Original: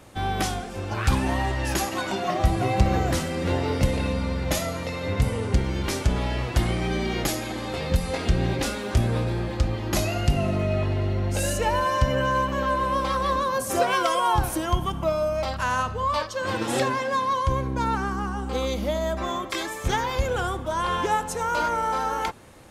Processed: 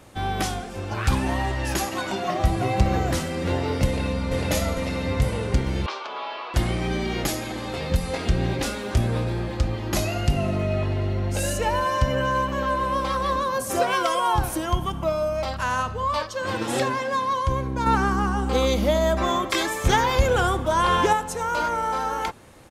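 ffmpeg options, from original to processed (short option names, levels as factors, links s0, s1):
-filter_complex "[0:a]asplit=2[s0][s1];[s1]afade=t=in:st=3.86:d=0.01,afade=t=out:st=4.29:d=0.01,aecho=0:1:450|900|1350|1800|2250|2700|3150|3600|4050|4500|4950|5400:0.944061|0.660843|0.46259|0.323813|0.226669|0.158668|0.111068|0.0777475|0.0544232|0.0380963|0.0266674|0.0186672[s2];[s0][s2]amix=inputs=2:normalize=0,asettb=1/sr,asplit=3[s3][s4][s5];[s3]atrim=end=5.864[s6];[s4]atrim=start=5.86:end=6.54,asetpts=PTS-STARTPTS,afade=t=in:d=0.004:c=qsin,afade=t=out:st=0.676:d=0.004:c=qsin,highpass=f=480:w=0.5412,highpass=f=480:w=1.3066,equalizer=f=520:t=q:w=4:g=-8,equalizer=f=1100:t=q:w=4:g=9,equalizer=f=1900:t=q:w=4:g=-8,lowpass=f=4200:w=0.5412,lowpass=f=4200:w=1.3066[s7];[s5]atrim=start=6.536[s8];[s6][s7]acrossfade=d=0.004:c1=hsin:c2=qsin[s9];[s9][s8]acrossfade=d=0.004:c1=qsin:c2=hsin,asettb=1/sr,asplit=3[s10][s11][s12];[s10]atrim=end=17.864[s13];[s11]atrim=start=17.86:end=21.13,asetpts=PTS-STARTPTS,afade=t=in:d=0.004:c=qsin,afade=t=out:st=3.266:d=0.004:c=qsin,acontrast=39[s14];[s12]atrim=start=21.126[s15];[s13][s14]acrossfade=d=0.004:c1=hsin:c2=qsin[s16];[s16][s15]acrossfade=d=0.004:c1=qsin:c2=hsin"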